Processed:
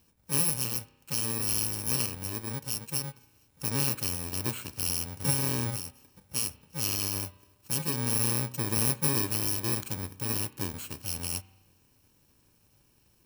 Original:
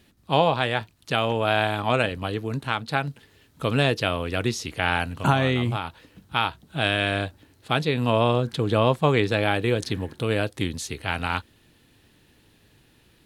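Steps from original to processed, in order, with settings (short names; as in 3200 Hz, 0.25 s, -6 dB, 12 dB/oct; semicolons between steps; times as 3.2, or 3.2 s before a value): FFT order left unsorted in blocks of 64 samples; spring tank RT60 1.1 s, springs 32 ms, chirp 25 ms, DRR 17 dB; gain -7 dB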